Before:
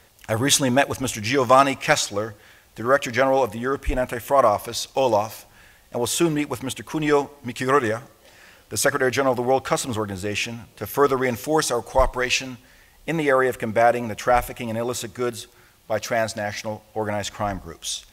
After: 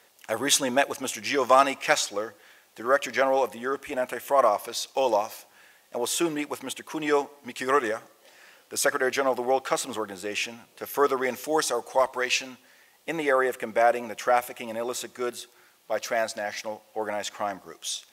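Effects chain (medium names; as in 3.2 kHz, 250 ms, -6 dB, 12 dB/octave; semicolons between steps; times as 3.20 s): high-pass 310 Hz 12 dB/octave; trim -3.5 dB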